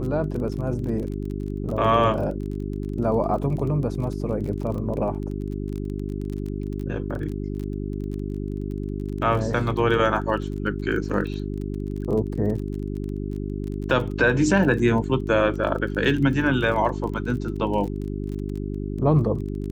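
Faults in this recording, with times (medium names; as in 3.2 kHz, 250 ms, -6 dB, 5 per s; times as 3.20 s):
crackle 25 per s -31 dBFS
hum 50 Hz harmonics 8 -29 dBFS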